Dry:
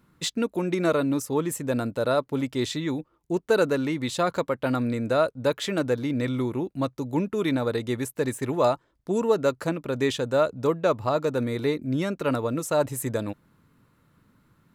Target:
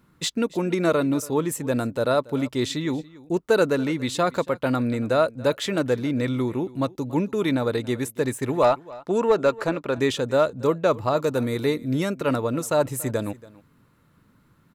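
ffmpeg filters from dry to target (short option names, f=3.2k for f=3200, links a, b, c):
-filter_complex "[0:a]asettb=1/sr,asplit=3[a][b][c];[a]atrim=end=8.624[d];[b]atrim=start=8.62:end=9.98,asetpts=PTS-STARTPTS,afade=t=in:d=0.004:c=qsin,afade=t=out:st=1.356:d=0.004:c=qsin,asplit=2[e][f];[f]highpass=f=720:p=1,volume=11dB,asoftclip=type=tanh:threshold=-10.5dB[g];[e][g]amix=inputs=2:normalize=0,lowpass=f=2.5k:p=1,volume=-6dB[h];[c]atrim=start=9.976[i];[d][h]acrossfade=d=0.004:c1=hsin:c2=qsin[j];[j][i]acrossfade=d=0.004:c1=qsin:c2=hsin,asettb=1/sr,asplit=3[k][l][m];[k]atrim=end=11.174[n];[l]atrim=start=11.17:end=12.15,asetpts=PTS-STARTPTS,afade=t=in:d=0.004:c=qsin,afade=t=out:st=0.976:d=0.004:c=qsin,highshelf=f=8k:g=9.5[o];[m]atrim=start=12.146[p];[n][o]acrossfade=d=0.004:c1=hsin:c2=qsin[q];[q][p]acrossfade=d=0.004:c1=qsin:c2=hsin,aecho=1:1:282:0.0944,volume=2dB"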